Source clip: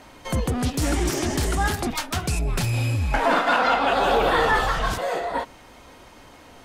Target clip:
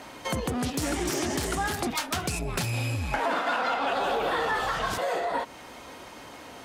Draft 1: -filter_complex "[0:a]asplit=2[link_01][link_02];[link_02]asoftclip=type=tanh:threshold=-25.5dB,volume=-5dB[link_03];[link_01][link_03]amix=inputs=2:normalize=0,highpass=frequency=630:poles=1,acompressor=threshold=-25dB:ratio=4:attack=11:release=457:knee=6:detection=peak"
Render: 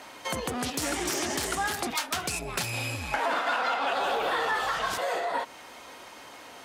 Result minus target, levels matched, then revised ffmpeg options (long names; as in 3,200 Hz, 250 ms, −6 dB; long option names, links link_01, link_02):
125 Hz band −7.0 dB
-filter_complex "[0:a]asplit=2[link_01][link_02];[link_02]asoftclip=type=tanh:threshold=-25.5dB,volume=-5dB[link_03];[link_01][link_03]amix=inputs=2:normalize=0,highpass=frequency=170:poles=1,acompressor=threshold=-25dB:ratio=4:attack=11:release=457:knee=6:detection=peak"